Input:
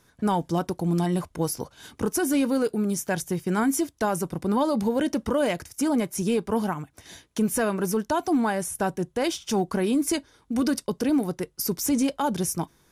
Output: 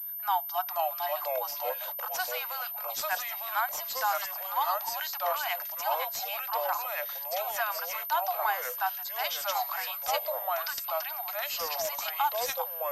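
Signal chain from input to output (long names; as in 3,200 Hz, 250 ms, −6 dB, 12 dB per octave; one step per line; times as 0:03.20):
Chebyshev high-pass filter 700 Hz, order 8
delay with pitch and tempo change per echo 432 ms, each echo −3 semitones, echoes 2
switching amplifier with a slow clock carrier 13,000 Hz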